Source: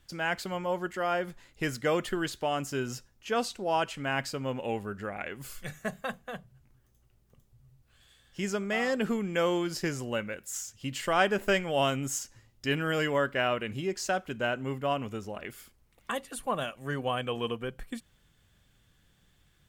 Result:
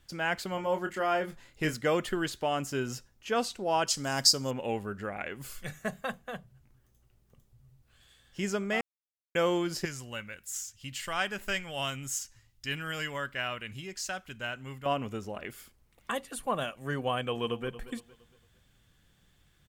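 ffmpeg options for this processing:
ffmpeg -i in.wav -filter_complex "[0:a]asettb=1/sr,asplit=3[link_01][link_02][link_03];[link_01]atrim=end=0.554[link_04];[link_02]atrim=start=0.55:end=1.74,asetpts=PTS-STARTPTS,afade=type=in:duration=0.004:curve=qsin,afade=type=out:start_time=1.186:duration=0.004:curve=qsin,asplit=2[link_05][link_06];[link_06]adelay=26,volume=-7.5dB[link_07];[link_05][link_07]amix=inputs=2:normalize=0,atrim=end_sample=52479[link_08];[link_03]atrim=start=1.736[link_09];[link_04][link_08]acrossfade=duration=0.004:curve1=hsin:curve2=qsin[link_10];[link_10][link_09]acrossfade=duration=0.004:curve1=qsin:curve2=hsin,asettb=1/sr,asplit=3[link_11][link_12][link_13];[link_11]atrim=end=3.874[link_14];[link_12]atrim=start=3.87:end=4.51,asetpts=PTS-STARTPTS,afade=type=in:duration=0.004:curve=qsin,afade=type=out:start_time=0.636:duration=0.004:curve=qsin,highshelf=frequency=3600:width_type=q:width=3:gain=13[link_15];[link_13]atrim=start=4.506[link_16];[link_14][link_15]acrossfade=duration=0.004:curve1=hsin:curve2=qsin[link_17];[link_17][link_16]acrossfade=duration=0.004:curve1=qsin:curve2=hsin,asettb=1/sr,asplit=3[link_18][link_19][link_20];[link_18]atrim=end=9.854[link_21];[link_19]atrim=start=9.85:end=14.86,asetpts=PTS-STARTPTS,afade=type=in:duration=0.004:curve=qsin,afade=type=out:start_time=5.006:duration=0.004:curve=qsin,equalizer=frequency=400:width_type=o:width=2.8:gain=-13[link_22];[link_20]atrim=start=14.856[link_23];[link_21][link_22]acrossfade=duration=0.004:curve1=hsin:curve2=qsin[link_24];[link_24][link_23]acrossfade=duration=0.004:curve1=qsin:curve2=hsin,asplit=2[link_25][link_26];[link_26]afade=type=in:start_time=17.22:duration=0.01,afade=type=out:start_time=17.67:duration=0.01,aecho=0:1:230|460|690|920:0.177828|0.0711312|0.0284525|0.011381[link_27];[link_25][link_27]amix=inputs=2:normalize=0,asplit=3[link_28][link_29][link_30];[link_28]atrim=end=8.81,asetpts=PTS-STARTPTS,afade=type=out:start_time=8.806:duration=0.004:curve=hsin[link_31];[link_29]atrim=start=8.81:end=9.35,asetpts=PTS-STARTPTS,volume=0[link_32];[link_30]atrim=start=9.35,asetpts=PTS-STARTPTS,afade=type=in:duration=0.004:curve=hsin[link_33];[link_31][link_32][link_33]concat=n=3:v=0:a=1" out.wav

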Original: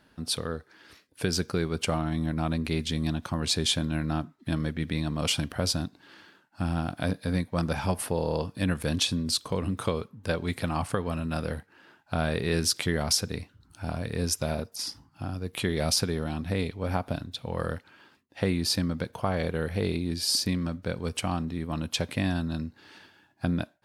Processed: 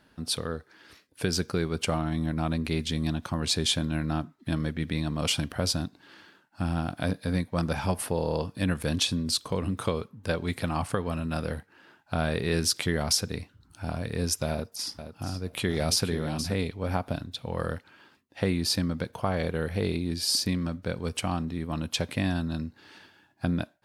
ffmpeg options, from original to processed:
ffmpeg -i in.wav -filter_complex "[0:a]asettb=1/sr,asplit=3[link_01][link_02][link_03];[link_01]atrim=end=14.514[link_04];[link_02]atrim=start=14.51:end=16.55,asetpts=PTS-STARTPTS,afade=type=in:duration=0.004:curve=qsin,afade=type=out:start_time=2.036:duration=0.004:curve=qsin,aecho=1:1:474|948:0.316|0.0538,atrim=end_sample=89964[link_05];[link_03]atrim=start=16.546[link_06];[link_04][link_05]acrossfade=duration=0.004:curve1=hsin:curve2=qsin[link_07];[link_07][link_06]acrossfade=duration=0.004:curve1=qsin:curve2=hsin" out.wav

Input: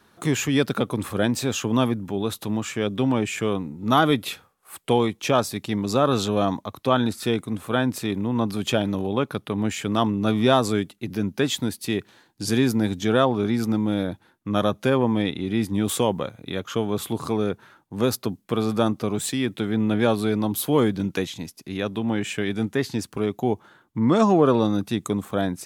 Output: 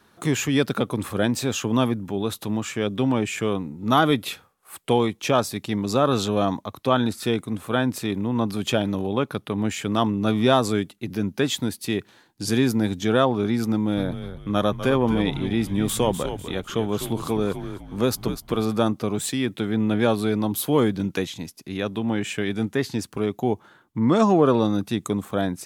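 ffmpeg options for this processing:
ffmpeg -i in.wav -filter_complex "[0:a]asettb=1/sr,asplit=3[link_01][link_02][link_03];[link_01]atrim=end=13.724[link_04];[link_02]atrim=start=13.72:end=18.69,asetpts=PTS-STARTPTS,afade=type=in:duration=0.004:curve=qsin,afade=type=out:start_time=4.966:duration=0.004:curve=qsin,asplit=5[link_05][link_06][link_07][link_08][link_09];[link_06]adelay=249,afreqshift=-83,volume=-9.5dB[link_10];[link_07]adelay=498,afreqshift=-166,volume=-18.1dB[link_11];[link_08]adelay=747,afreqshift=-249,volume=-26.8dB[link_12];[link_09]adelay=996,afreqshift=-332,volume=-35.4dB[link_13];[link_05][link_10][link_11][link_12][link_13]amix=inputs=5:normalize=0,atrim=end_sample=219177[link_14];[link_03]atrim=start=18.686[link_15];[link_04][link_14]acrossfade=duration=0.004:curve1=hsin:curve2=qsin[link_16];[link_16][link_15]acrossfade=duration=0.004:curve1=qsin:curve2=hsin" out.wav

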